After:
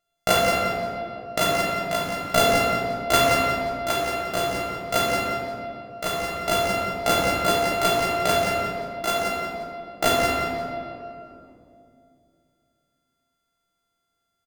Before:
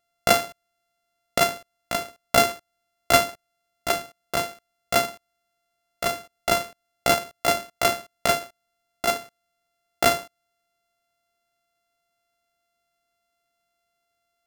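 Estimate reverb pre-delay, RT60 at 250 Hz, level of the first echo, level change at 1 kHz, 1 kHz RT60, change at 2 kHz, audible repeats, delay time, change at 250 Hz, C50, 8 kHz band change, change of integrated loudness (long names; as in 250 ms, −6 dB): 6 ms, 3.5 s, −6.0 dB, +3.0 dB, 2.3 s, +2.5 dB, 1, 175 ms, +5.5 dB, −2.0 dB, −0.5 dB, +1.0 dB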